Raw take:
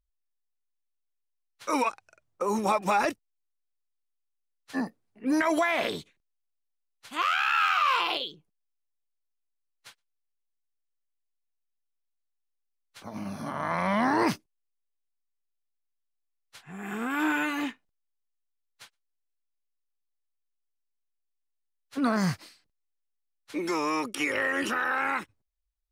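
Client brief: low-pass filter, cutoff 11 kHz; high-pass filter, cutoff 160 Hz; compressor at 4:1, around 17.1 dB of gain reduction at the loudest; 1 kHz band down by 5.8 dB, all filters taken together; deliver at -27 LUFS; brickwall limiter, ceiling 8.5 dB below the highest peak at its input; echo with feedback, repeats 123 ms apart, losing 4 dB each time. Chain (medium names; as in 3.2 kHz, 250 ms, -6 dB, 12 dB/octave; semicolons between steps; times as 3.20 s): high-pass 160 Hz; low-pass 11 kHz; peaking EQ 1 kHz -7.5 dB; compression 4:1, threshold -45 dBFS; peak limiter -36 dBFS; feedback delay 123 ms, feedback 63%, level -4 dB; trim +18.5 dB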